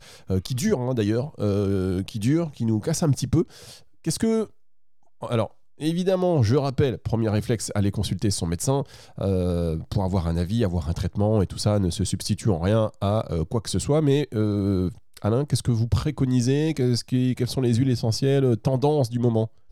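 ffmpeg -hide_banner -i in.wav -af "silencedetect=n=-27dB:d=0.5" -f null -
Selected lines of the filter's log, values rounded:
silence_start: 3.43
silence_end: 4.06 | silence_duration: 0.64
silence_start: 4.44
silence_end: 5.23 | silence_duration: 0.79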